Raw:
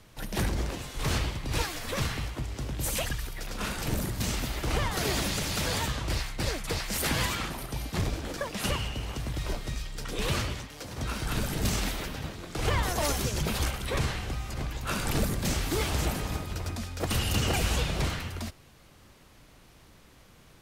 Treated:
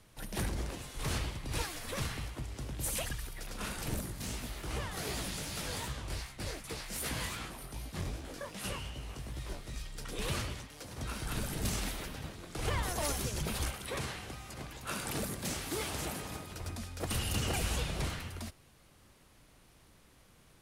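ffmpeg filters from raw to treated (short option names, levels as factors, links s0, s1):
-filter_complex "[0:a]asettb=1/sr,asplit=3[s0][s1][s2];[s0]atrim=end=4.014[s3];[s1]atrim=start=4.01:end=9.74,asetpts=PTS-STARTPTS,afade=t=in:d=0.004:c=qsin,afade=t=out:st=5.726:d=0.004:c=qsin,flanger=delay=15:depth=7.9:speed=2.6[s4];[s2]atrim=start=9.736[s5];[s3][s4]acrossfade=d=0.004:c1=hsin:c2=qsin[s6];[s6][s5]acrossfade=d=0.004:c1=qsin:c2=hsin,asettb=1/sr,asplit=3[s7][s8][s9];[s7]atrim=end=13.724[s10];[s8]atrim=start=13.72:end=16.6,asetpts=PTS-STARTPTS,afade=t=in:d=0.004:c=qsin,afade=t=out:st=2.876:d=0.004:c=qsin,highpass=f=160:p=1[s11];[s9]atrim=start=16.596[s12];[s10][s11]acrossfade=d=0.004:c1=hsin:c2=qsin[s13];[s13][s12]acrossfade=d=0.004:c1=qsin:c2=hsin,equalizer=f=10000:t=o:w=0.48:g=6,volume=0.473"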